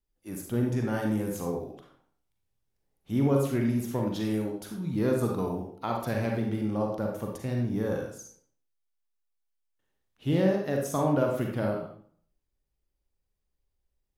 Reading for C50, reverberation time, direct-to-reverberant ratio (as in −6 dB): 2.5 dB, 0.55 s, 0.0 dB